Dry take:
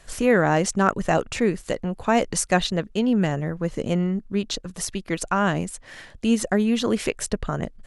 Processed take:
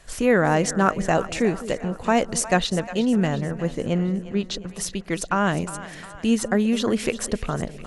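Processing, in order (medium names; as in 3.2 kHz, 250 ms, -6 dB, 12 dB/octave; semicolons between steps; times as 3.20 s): 3.81–4.69 s: distance through air 55 m; two-band feedback delay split 570 Hz, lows 205 ms, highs 357 ms, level -14 dB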